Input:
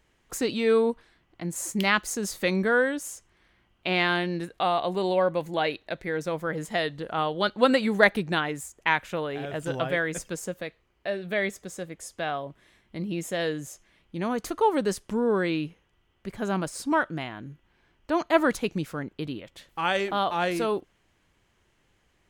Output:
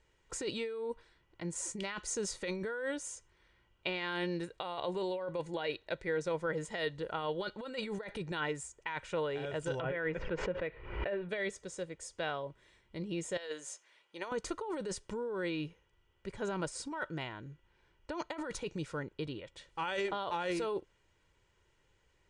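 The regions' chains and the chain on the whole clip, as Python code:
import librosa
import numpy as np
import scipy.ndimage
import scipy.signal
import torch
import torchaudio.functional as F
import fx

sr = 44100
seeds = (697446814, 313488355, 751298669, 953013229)

y = fx.chain(x, sr, fx.law_mismatch(coded='mu'),
    fx.lowpass(hz=2600.0, slope=24),
    fx.pre_swell(db_per_s=74.0), at=(9.8, 11.29))
y = fx.chain(y, sr, fx.highpass(hz=600.0, slope=12),
    fx.over_compress(threshold_db=-35.0, ratio=-0.5), at=(13.37, 14.32))
y = fx.over_compress(y, sr, threshold_db=-28.0, ratio=-1.0)
y = scipy.signal.sosfilt(scipy.signal.butter(8, 9300.0, 'lowpass', fs=sr, output='sos'), y)
y = y + 0.5 * np.pad(y, (int(2.1 * sr / 1000.0), 0))[:len(y)]
y = y * librosa.db_to_amplitude(-8.5)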